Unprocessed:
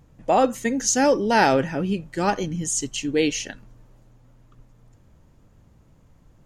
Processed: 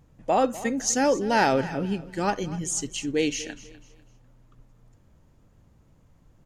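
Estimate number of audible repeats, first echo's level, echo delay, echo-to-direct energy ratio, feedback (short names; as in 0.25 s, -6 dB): 2, -17.0 dB, 0.248 s, -16.5 dB, 31%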